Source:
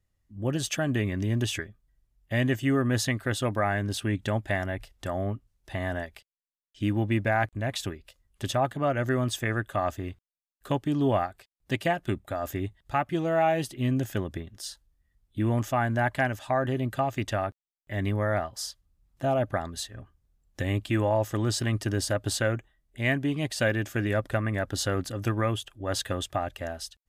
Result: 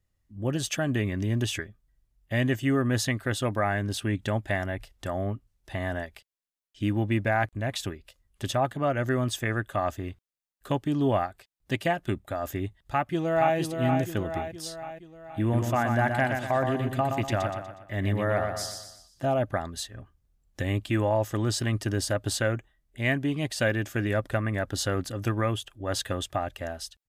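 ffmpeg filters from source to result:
-filter_complex "[0:a]asplit=2[a][b];[b]afade=t=in:st=12.81:d=0.01,afade=t=out:st=13.57:d=0.01,aecho=0:1:470|940|1410|1880|2350|2820|3290:0.530884|0.291986|0.160593|0.0883259|0.0485792|0.0267186|0.0146952[c];[a][c]amix=inputs=2:normalize=0,asettb=1/sr,asplit=3[d][e][f];[d]atrim=end=15.414[g];[e]atrim=start=15.41:end=19.26,asetpts=PTS-STARTPTS,afade=t=in:d=0.004:c=qsin,afade=t=out:st=3.846:d=0.004:c=qsin,aecho=1:1:121|242|363|484|605:0.531|0.234|0.103|0.0452|0.0199,atrim=end_sample=169785[h];[f]atrim=start=19.256[i];[g][h]acrossfade=d=0.004:c1=hsin:c2=qsin[j];[j][i]acrossfade=d=0.004:c1=qsin:c2=hsin"

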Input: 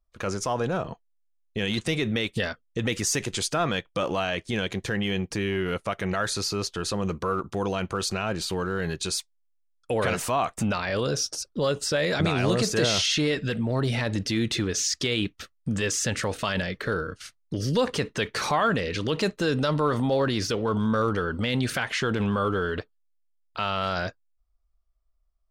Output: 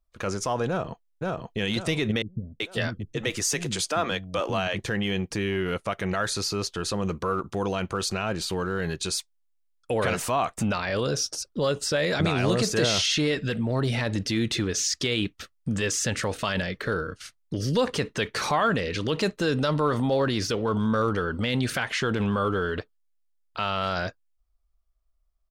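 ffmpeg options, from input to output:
-filter_complex "[0:a]asplit=2[a][b];[b]afade=t=in:st=0.68:d=0.01,afade=t=out:st=1.58:d=0.01,aecho=0:1:530|1060|1590|2120|2650:0.841395|0.294488|0.103071|0.0360748|0.0126262[c];[a][c]amix=inputs=2:normalize=0,asettb=1/sr,asplit=3[d][e][f];[d]atrim=end=2.224[g];[e]atrim=start=2.22:end=4.79,asetpts=PTS-STARTPTS,afade=t=in:d=0.004:c=qsin,afade=t=out:st=2.566:d=0.004:c=qsin,acrossover=split=260[h][i];[i]adelay=380[j];[h][j]amix=inputs=2:normalize=0,atrim=end_sample=113337[k];[f]atrim=start=4.786[l];[g][k]acrossfade=d=0.004:c1=hsin:c2=qsin[m];[m][l]acrossfade=d=0.004:c1=qsin:c2=hsin"

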